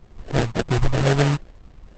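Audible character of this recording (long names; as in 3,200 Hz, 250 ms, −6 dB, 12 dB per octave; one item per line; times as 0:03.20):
phaser sweep stages 2, 1.9 Hz, lowest notch 380–2,300 Hz
aliases and images of a low sample rate 1,100 Hz, jitter 20%
Opus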